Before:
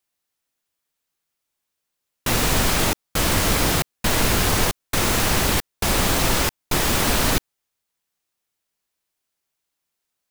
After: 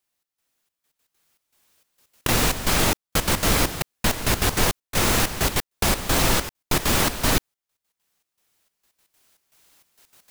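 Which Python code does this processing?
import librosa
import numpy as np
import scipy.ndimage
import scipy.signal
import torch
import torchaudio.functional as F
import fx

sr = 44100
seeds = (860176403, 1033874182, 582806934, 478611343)

y = fx.recorder_agc(x, sr, target_db=-9.5, rise_db_per_s=9.4, max_gain_db=30)
y = fx.step_gate(y, sr, bpm=197, pattern='xxx..xxxx..x.x.', floor_db=-12.0, edge_ms=4.5)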